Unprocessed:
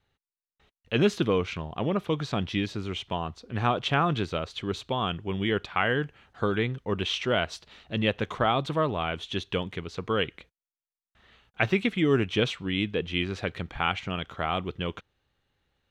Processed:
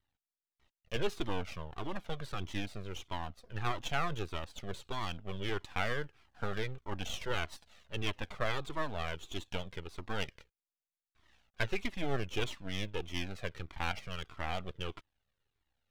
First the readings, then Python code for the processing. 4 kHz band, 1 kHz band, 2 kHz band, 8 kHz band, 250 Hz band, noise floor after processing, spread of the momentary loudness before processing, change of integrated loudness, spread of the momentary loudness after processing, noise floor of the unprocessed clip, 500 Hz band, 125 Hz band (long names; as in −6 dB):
−9.5 dB, −9.5 dB, −8.5 dB, −3.0 dB, −14.0 dB, below −85 dBFS, 9 LU, −10.5 dB, 8 LU, below −85 dBFS, −12.0 dB, −10.0 dB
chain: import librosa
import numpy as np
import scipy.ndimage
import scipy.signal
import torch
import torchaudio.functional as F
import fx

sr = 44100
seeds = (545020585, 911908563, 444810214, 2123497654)

y = np.maximum(x, 0.0)
y = fx.comb_cascade(y, sr, direction='falling', hz=1.6)
y = F.gain(torch.from_numpy(y), -2.0).numpy()